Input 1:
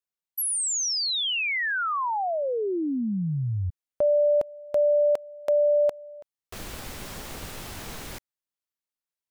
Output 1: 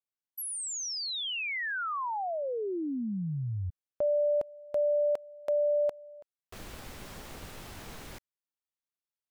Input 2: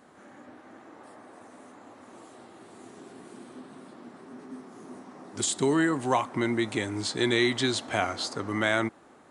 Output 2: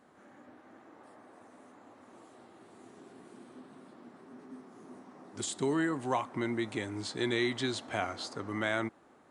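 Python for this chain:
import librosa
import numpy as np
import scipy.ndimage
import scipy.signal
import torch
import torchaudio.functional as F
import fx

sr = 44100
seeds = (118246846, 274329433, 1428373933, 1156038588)

y = fx.high_shelf(x, sr, hz=3900.0, db=-4.0)
y = y * 10.0 ** (-6.0 / 20.0)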